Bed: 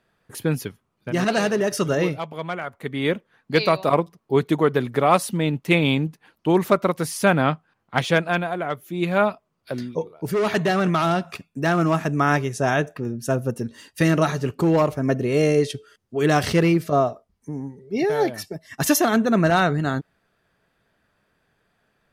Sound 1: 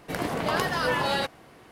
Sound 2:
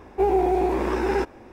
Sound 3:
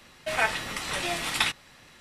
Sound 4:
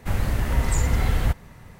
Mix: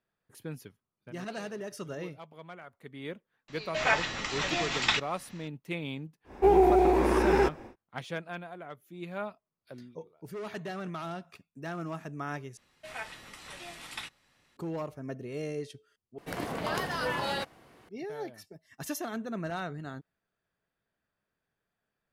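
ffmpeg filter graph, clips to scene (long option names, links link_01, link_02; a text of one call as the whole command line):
ffmpeg -i bed.wav -i cue0.wav -i cue1.wav -i cue2.wav -filter_complex "[3:a]asplit=2[link_01][link_02];[0:a]volume=-17.5dB[link_03];[link_01]aresample=16000,aresample=44100[link_04];[link_03]asplit=3[link_05][link_06][link_07];[link_05]atrim=end=12.574[link_08];[link_02]atrim=end=2,asetpts=PTS-STARTPTS,volume=-15dB[link_09];[link_06]atrim=start=14.566:end=16.184[link_10];[1:a]atrim=end=1.71,asetpts=PTS-STARTPTS,volume=-6dB[link_11];[link_07]atrim=start=17.886[link_12];[link_04]atrim=end=2,asetpts=PTS-STARTPTS,volume=-1dB,afade=type=in:duration=0.004:curve=hsin,afade=type=out:start_time=1.996:duration=0.004:curve=hsin,adelay=3480[link_13];[2:a]atrim=end=1.52,asetpts=PTS-STARTPTS,volume=-0.5dB,afade=type=in:duration=0.1,afade=type=out:start_time=1.42:duration=0.1,adelay=6240[link_14];[link_08][link_09]acrossfade=duration=0.004:curve1=hsin:curve2=hsin[link_15];[link_15][link_10]acrossfade=duration=0.004:curve1=hsin:curve2=hsin[link_16];[link_16][link_11]acrossfade=duration=0.004:curve1=hsin:curve2=hsin[link_17];[link_17][link_12]acrossfade=duration=0.004:curve1=hsin:curve2=hsin[link_18];[link_18][link_13][link_14]amix=inputs=3:normalize=0" out.wav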